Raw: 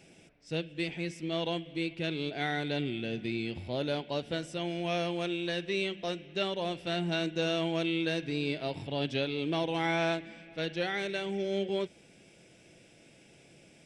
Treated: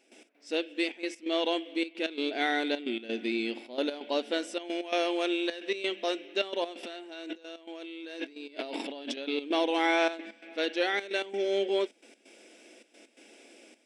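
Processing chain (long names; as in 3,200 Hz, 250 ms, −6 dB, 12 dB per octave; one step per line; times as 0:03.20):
0:06.83–0:09.17: compressor whose output falls as the input rises −43 dBFS, ratio −1
gate pattern ".x.xxxxx" 131 BPM −12 dB
linear-phase brick-wall high-pass 220 Hz
level +4.5 dB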